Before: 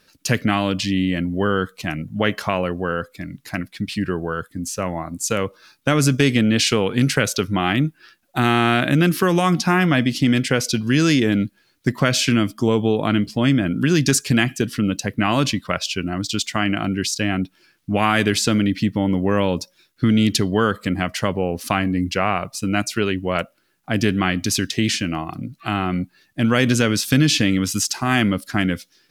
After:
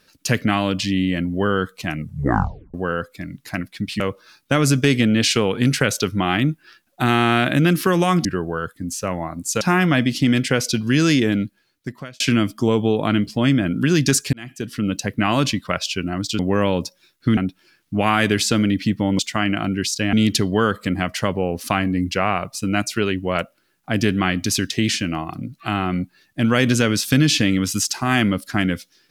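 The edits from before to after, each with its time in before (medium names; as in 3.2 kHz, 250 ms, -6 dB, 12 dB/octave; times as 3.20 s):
1.98 s: tape stop 0.76 s
4.00–5.36 s: move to 9.61 s
11.21–12.20 s: fade out
14.33–14.97 s: fade in
16.39–17.33 s: swap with 19.15–20.13 s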